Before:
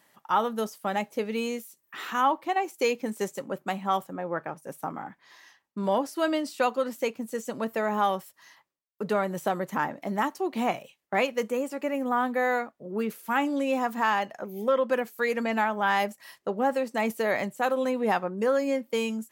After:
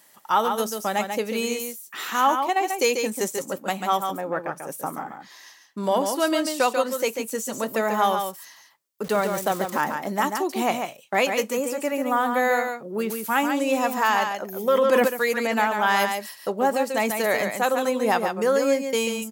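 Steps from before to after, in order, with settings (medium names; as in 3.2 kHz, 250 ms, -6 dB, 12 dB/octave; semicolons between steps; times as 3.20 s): 9.04–9.81 s: small samples zeroed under -41.5 dBFS; tone controls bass -4 dB, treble +9 dB; on a send: delay 141 ms -6 dB; 14.55–15.08 s: on the sum: decay stretcher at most 21 dB/s; trim +3.5 dB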